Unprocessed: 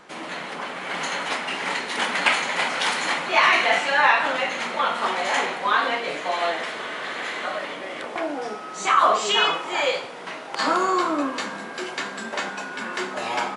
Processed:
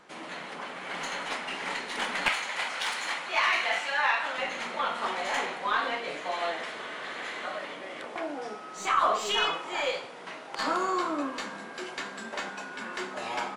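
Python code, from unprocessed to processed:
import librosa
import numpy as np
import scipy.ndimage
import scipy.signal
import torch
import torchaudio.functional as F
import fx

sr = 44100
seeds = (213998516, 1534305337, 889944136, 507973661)

y = fx.tracing_dist(x, sr, depth_ms=0.021)
y = fx.low_shelf(y, sr, hz=450.0, db=-11.5, at=(2.28, 4.38))
y = y * librosa.db_to_amplitude(-7.0)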